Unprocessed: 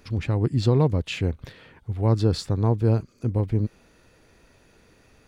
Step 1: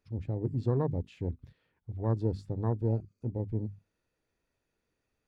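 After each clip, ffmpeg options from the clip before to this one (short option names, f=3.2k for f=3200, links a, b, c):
-af "bandreject=f=50:t=h:w=6,bandreject=f=100:t=h:w=6,bandreject=f=150:t=h:w=6,bandreject=f=200:t=h:w=6,bandreject=f=250:t=h:w=6,afwtdn=0.0355,volume=-8.5dB"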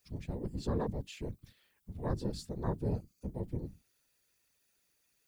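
-af "crystalizer=i=10:c=0,afftfilt=real='hypot(re,im)*cos(2*PI*random(0))':imag='hypot(re,im)*sin(2*PI*random(1))':win_size=512:overlap=0.75"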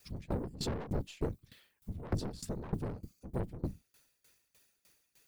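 -af "aeval=exprs='(tanh(89.1*val(0)+0.4)-tanh(0.4))/89.1':c=same,aeval=exprs='val(0)*pow(10,-21*if(lt(mod(3.3*n/s,1),2*abs(3.3)/1000),1-mod(3.3*n/s,1)/(2*abs(3.3)/1000),(mod(3.3*n/s,1)-2*abs(3.3)/1000)/(1-2*abs(3.3)/1000))/20)':c=same,volume=13.5dB"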